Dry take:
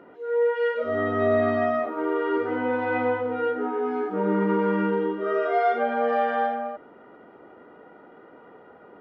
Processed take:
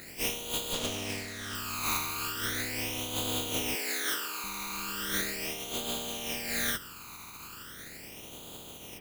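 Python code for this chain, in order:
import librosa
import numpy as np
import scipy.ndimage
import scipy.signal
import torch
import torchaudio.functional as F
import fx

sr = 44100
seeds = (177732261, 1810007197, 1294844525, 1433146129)

y = fx.spec_flatten(x, sr, power=0.17)
y = fx.highpass(y, sr, hz=310.0, slope=24, at=(3.75, 4.44))
y = fx.over_compress(y, sr, threshold_db=-32.0, ratio=-1.0)
y = fx.phaser_stages(y, sr, stages=12, low_hz=550.0, high_hz=1800.0, hz=0.38, feedback_pct=40)
y = fx.running_max(y, sr, window=3, at=(0.73, 1.55))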